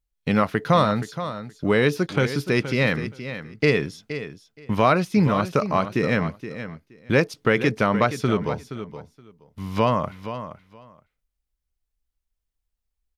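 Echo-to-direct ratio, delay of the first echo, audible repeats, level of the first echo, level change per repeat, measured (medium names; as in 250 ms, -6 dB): -11.5 dB, 472 ms, 2, -11.5 dB, -16.0 dB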